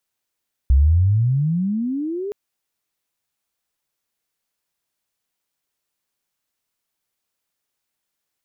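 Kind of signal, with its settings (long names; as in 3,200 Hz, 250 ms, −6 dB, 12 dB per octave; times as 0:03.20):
glide logarithmic 63 Hz → 420 Hz −9.5 dBFS → −24 dBFS 1.62 s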